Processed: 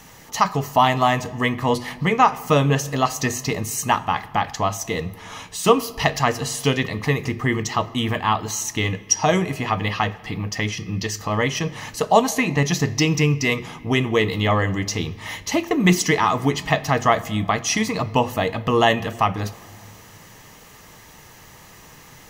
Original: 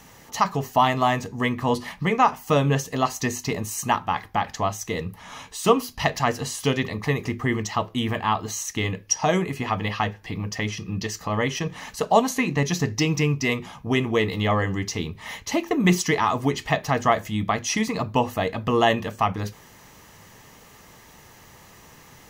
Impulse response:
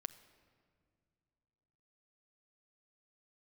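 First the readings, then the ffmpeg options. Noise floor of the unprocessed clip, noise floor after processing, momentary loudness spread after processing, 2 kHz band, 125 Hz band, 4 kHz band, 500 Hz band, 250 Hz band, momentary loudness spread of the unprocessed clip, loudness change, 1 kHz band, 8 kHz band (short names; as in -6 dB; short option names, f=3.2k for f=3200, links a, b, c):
-50 dBFS, -46 dBFS, 9 LU, +3.5 dB, +3.5 dB, +4.0 dB, +2.5 dB, +2.0 dB, 9 LU, +3.0 dB, +3.0 dB, +4.0 dB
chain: -filter_complex "[0:a]asplit=2[a][b];[b]equalizer=f=350:w=0.32:g=-3[c];[1:a]atrim=start_sample=2205[d];[c][d]afir=irnorm=-1:irlink=0,volume=11dB[e];[a][e]amix=inputs=2:normalize=0,volume=-6.5dB"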